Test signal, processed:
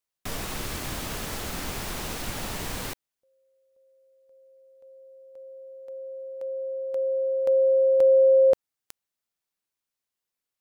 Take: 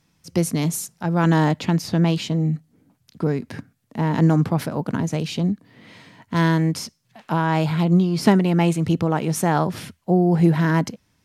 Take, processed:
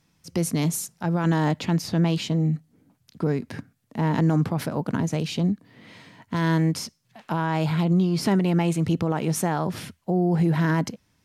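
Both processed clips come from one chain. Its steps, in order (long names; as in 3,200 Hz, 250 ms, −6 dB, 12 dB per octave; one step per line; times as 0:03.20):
brickwall limiter −12 dBFS
level −1.5 dB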